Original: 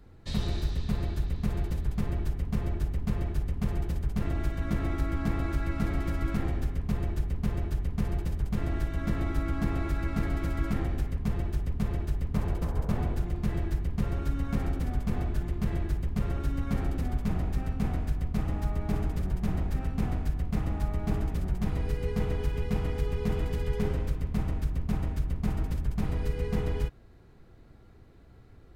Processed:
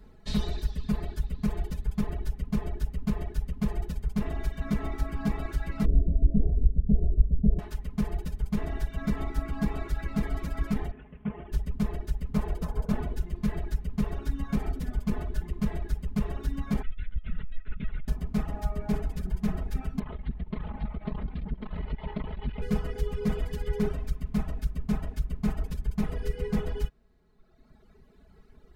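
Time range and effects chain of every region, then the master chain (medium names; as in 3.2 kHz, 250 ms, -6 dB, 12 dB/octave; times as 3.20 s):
5.85–7.59 s: steep low-pass 640 Hz 48 dB/octave + bass shelf 140 Hz +9.5 dB
10.91–11.52 s: CVSD coder 16 kbps + high-pass 170 Hz 6 dB/octave + distance through air 410 m
16.82–18.08 s: inverse Chebyshev band-stop 320–650 Hz, stop band 60 dB + LPC vocoder at 8 kHz pitch kept
19.99–22.62 s: comb filter that takes the minimum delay 0.95 ms + steep low-pass 4 kHz 48 dB/octave + transformer saturation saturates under 130 Hz
whole clip: reverb removal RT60 1.7 s; comb 4.7 ms, depth 79%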